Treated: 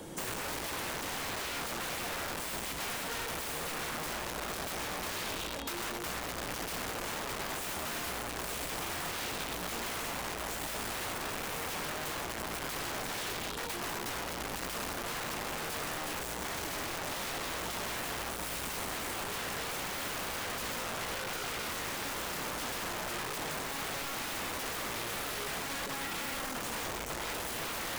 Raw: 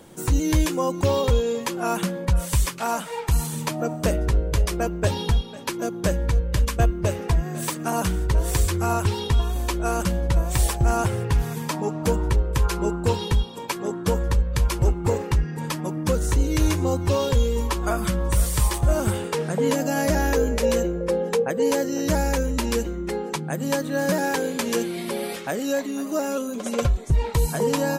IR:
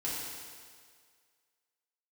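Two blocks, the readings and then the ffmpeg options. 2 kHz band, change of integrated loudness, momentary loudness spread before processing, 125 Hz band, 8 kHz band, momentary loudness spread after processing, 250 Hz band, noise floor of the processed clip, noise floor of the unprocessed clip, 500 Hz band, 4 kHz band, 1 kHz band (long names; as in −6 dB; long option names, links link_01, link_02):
−4.0 dB, −12.0 dB, 6 LU, −24.0 dB, −6.5 dB, 1 LU, −18.0 dB, −39 dBFS, −33 dBFS, −17.0 dB, −3.5 dB, −8.5 dB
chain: -filter_complex "[0:a]aeval=exprs='(tanh(22.4*val(0)+0.1)-tanh(0.1))/22.4':channel_layout=same,asplit=2[link_01][link_02];[1:a]atrim=start_sample=2205[link_03];[link_02][link_03]afir=irnorm=-1:irlink=0,volume=-6dB[link_04];[link_01][link_04]amix=inputs=2:normalize=0,aeval=exprs='(mod(22.4*val(0)+1,2)-1)/22.4':channel_layout=same,acrossover=split=240|640|3400[link_05][link_06][link_07][link_08];[link_05]acompressor=threshold=-48dB:ratio=4[link_09];[link_06]acompressor=threshold=-46dB:ratio=4[link_10];[link_07]acompressor=threshold=-38dB:ratio=4[link_11];[link_08]acompressor=threshold=-40dB:ratio=4[link_12];[link_09][link_10][link_11][link_12]amix=inputs=4:normalize=0"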